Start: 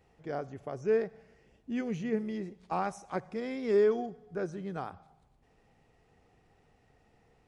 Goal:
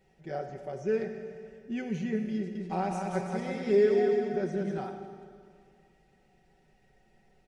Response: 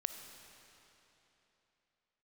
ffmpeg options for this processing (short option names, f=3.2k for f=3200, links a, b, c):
-filter_complex "[0:a]equalizer=f=1.1k:t=o:w=0.3:g=-13.5,aecho=1:1:5.3:0.8,asettb=1/sr,asplit=3[a][b][c];[a]atrim=end=2.364[d];[b]atrim=start=2.36:end=4.78,asetpts=PTS-STARTPTS,afade=t=in:d=0.004:c=qsin,afade=t=out:st=2.416:d=0.004:c=qsin,aecho=1:1:190|332.5|439.4|519.5|579.6:0.631|0.398|0.251|0.158|0.1,atrim=end_sample=106722[e];[c]atrim=start=4.776[f];[d][e]acrossfade=d=0.004:c1=hsin:c2=qsin[g];[g][f]acrossfade=d=0.004:c1=qsin:c2=hsin[h];[1:a]atrim=start_sample=2205,asetrate=66150,aresample=44100[i];[h][i]afir=irnorm=-1:irlink=0,volume=3dB"